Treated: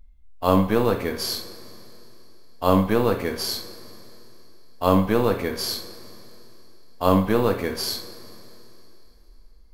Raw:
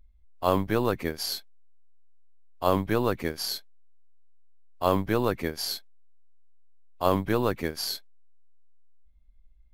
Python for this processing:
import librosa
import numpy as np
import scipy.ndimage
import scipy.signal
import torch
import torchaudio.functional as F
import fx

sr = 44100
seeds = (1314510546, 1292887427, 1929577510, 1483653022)

y = fx.rev_double_slope(x, sr, seeds[0], early_s=0.4, late_s=3.3, knee_db=-18, drr_db=4.5)
y = fx.hpss(y, sr, part='percussive', gain_db=-5)
y = F.gain(torch.from_numpy(y), 5.5).numpy()